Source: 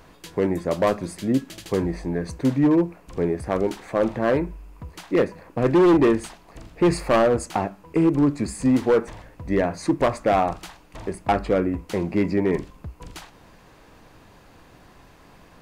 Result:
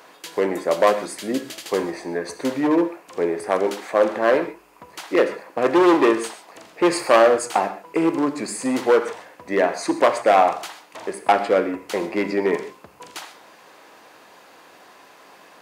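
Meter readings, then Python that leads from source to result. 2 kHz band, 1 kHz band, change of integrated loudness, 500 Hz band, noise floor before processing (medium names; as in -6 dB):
+6.0 dB, +5.5 dB, +2.0 dB, +3.0 dB, -52 dBFS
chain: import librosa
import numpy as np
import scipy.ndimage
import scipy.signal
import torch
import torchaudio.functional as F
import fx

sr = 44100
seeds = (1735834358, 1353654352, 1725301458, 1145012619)

y = scipy.signal.sosfilt(scipy.signal.butter(2, 450.0, 'highpass', fs=sr, output='sos'), x)
y = fx.rev_gated(y, sr, seeds[0], gate_ms=160, shape='flat', drr_db=9.5)
y = y * 10.0 ** (5.5 / 20.0)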